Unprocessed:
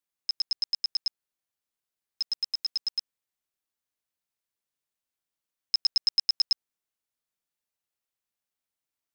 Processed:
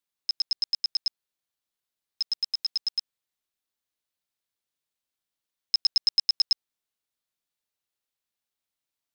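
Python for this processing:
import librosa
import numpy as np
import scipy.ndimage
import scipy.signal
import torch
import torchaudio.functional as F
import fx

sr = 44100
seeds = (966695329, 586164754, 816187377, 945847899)

y = fx.peak_eq(x, sr, hz=3800.0, db=4.0, octaves=0.73)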